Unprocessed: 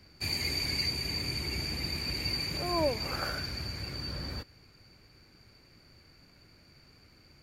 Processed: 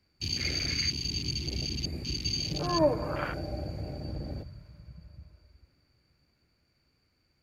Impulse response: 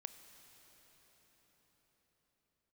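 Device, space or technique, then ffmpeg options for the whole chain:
cathedral: -filter_complex "[0:a]asettb=1/sr,asplit=3[a][b][c];[a]atrim=end=2.444[d];[b]atrim=start=2.44:end=2.94,asetpts=PTS-STARTPTS,afade=t=in:d=0.004:c=qsin,afade=t=out:st=0.496:d=0.004:c=qsin,aecho=1:1:6.6:0.68,atrim=end_sample=22050[e];[c]atrim=start=2.936[f];[d][e]acrossfade=d=0.004:c1=hsin:c2=qsin[g];[g][f]acrossfade=d=0.004:c1=qsin:c2=hsin[h];[1:a]atrim=start_sample=2205[i];[h][i]afir=irnorm=-1:irlink=0,afwtdn=0.01,volume=7.5dB"

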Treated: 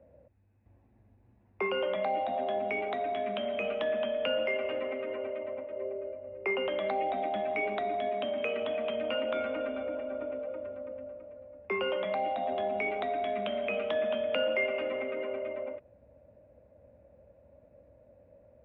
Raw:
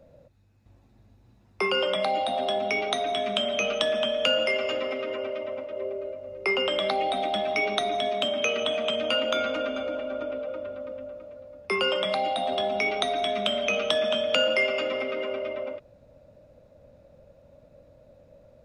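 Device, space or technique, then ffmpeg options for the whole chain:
bass cabinet: -af "highpass=61,equalizer=f=67:t=q:w=4:g=6,equalizer=f=150:t=q:w=4:g=-8,equalizer=f=1.3k:t=q:w=4:g=-7,lowpass=f=2.3k:w=0.5412,lowpass=f=2.3k:w=1.3066,volume=-4dB"

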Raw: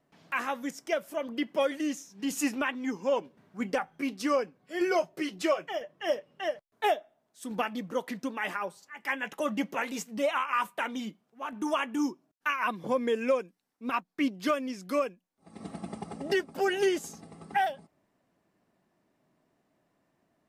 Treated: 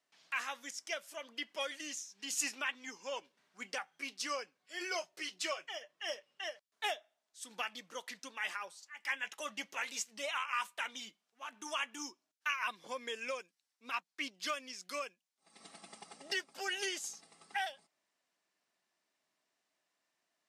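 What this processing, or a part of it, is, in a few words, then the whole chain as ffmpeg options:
piezo pickup straight into a mixer: -af "lowpass=5.9k,aderivative,volume=7dB"

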